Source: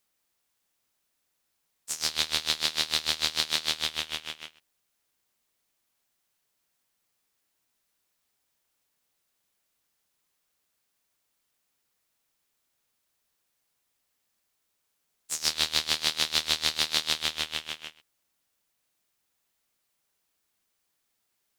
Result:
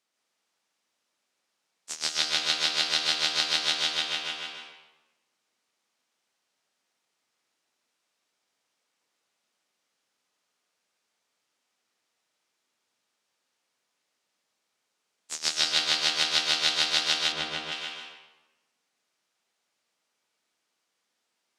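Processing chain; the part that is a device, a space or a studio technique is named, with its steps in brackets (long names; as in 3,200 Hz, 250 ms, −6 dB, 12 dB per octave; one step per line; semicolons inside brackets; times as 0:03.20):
supermarket ceiling speaker (band-pass filter 210–6,800 Hz; convolution reverb RT60 1.1 s, pre-delay 115 ms, DRR −0.5 dB)
0:17.32–0:17.72: spectral tilt −2.5 dB per octave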